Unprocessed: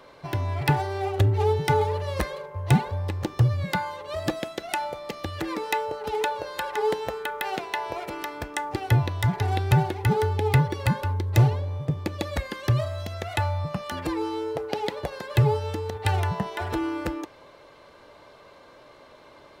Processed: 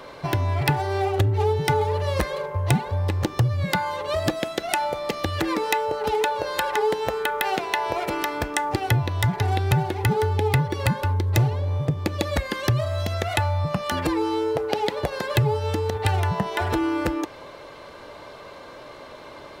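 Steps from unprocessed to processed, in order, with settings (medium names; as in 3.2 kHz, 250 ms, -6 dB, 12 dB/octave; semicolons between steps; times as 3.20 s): compression 2.5:1, threshold -31 dBFS, peak gain reduction 12 dB; trim +9 dB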